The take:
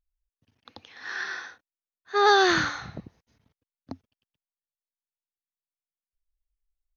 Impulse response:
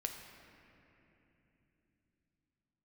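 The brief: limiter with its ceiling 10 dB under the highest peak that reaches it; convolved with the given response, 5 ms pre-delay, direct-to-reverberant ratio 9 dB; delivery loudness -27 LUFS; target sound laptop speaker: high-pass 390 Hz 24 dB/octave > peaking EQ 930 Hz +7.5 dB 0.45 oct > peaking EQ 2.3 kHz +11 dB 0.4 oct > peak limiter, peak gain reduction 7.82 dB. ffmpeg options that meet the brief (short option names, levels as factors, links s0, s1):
-filter_complex "[0:a]alimiter=limit=0.15:level=0:latency=1,asplit=2[s0][s1];[1:a]atrim=start_sample=2205,adelay=5[s2];[s1][s2]afir=irnorm=-1:irlink=0,volume=0.376[s3];[s0][s3]amix=inputs=2:normalize=0,highpass=f=390:w=0.5412,highpass=f=390:w=1.3066,equalizer=f=930:t=o:w=0.45:g=7.5,equalizer=f=2300:t=o:w=0.4:g=11,volume=1.68,alimiter=limit=0.158:level=0:latency=1"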